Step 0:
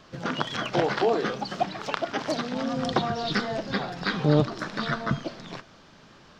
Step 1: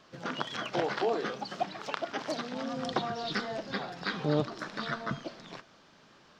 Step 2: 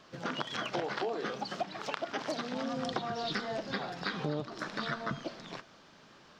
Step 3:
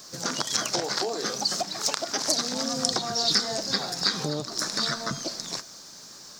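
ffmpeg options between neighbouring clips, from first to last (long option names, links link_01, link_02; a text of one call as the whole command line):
ffmpeg -i in.wav -af "lowshelf=frequency=120:gain=-11.5,volume=-5.5dB" out.wav
ffmpeg -i in.wav -af "acompressor=threshold=-32dB:ratio=6,volume=1.5dB" out.wav
ffmpeg -i in.wav -af "aexciter=amount=15:drive=2.8:freq=4500,volume=4dB" out.wav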